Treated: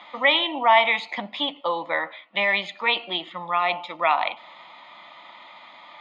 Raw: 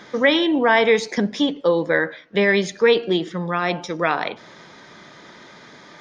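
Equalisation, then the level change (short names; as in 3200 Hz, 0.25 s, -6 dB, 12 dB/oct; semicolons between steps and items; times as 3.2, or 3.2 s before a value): BPF 570–3800 Hz; fixed phaser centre 1600 Hz, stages 6; +4.5 dB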